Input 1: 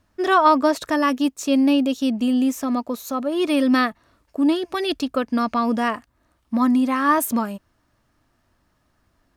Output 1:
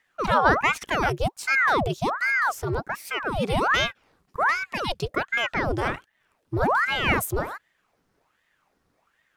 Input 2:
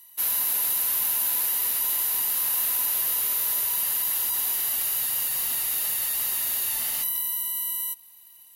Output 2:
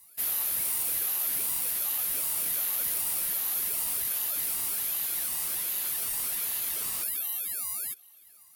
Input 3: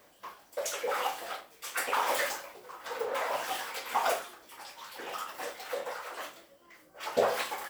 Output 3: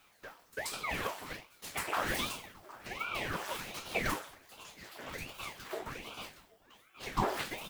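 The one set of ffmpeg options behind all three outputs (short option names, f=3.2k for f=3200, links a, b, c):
-af "aeval=exprs='val(0)*sin(2*PI*1000*n/s+1000*0.9/1.3*sin(2*PI*1.3*n/s))':c=same,volume=-1.5dB"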